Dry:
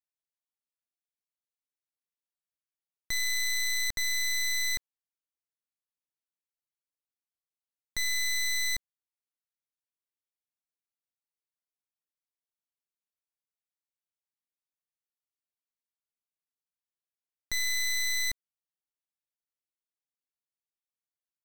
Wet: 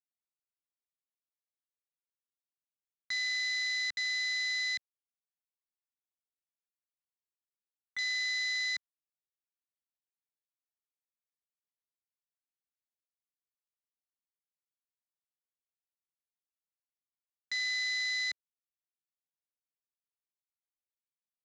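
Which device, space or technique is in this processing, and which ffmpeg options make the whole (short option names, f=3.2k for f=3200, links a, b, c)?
over-cleaned archive recording: -af "highpass=150,lowpass=5.3k,afwtdn=0.00891"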